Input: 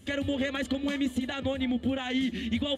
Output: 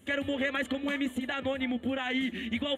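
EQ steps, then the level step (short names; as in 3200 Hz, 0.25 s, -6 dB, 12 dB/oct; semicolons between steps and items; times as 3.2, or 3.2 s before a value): low shelf 160 Hz -11.5 dB; bell 5000 Hz -15 dB 0.73 oct; dynamic EQ 1900 Hz, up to +5 dB, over -45 dBFS, Q 0.76; 0.0 dB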